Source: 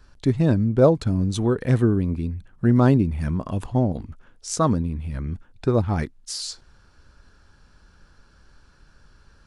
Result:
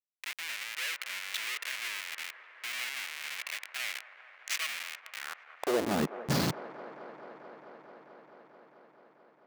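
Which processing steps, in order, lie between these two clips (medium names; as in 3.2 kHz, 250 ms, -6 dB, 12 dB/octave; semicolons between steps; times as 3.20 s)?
tone controls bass -9 dB, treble -8 dB; peak limiter -16.5 dBFS, peak gain reduction 10.5 dB; Schmitt trigger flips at -32.5 dBFS; high-pass sweep 2.2 kHz -> 150 Hz, 5.15–6.10 s; feedback echo behind a band-pass 219 ms, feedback 84%, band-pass 810 Hz, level -12 dB; trim +1 dB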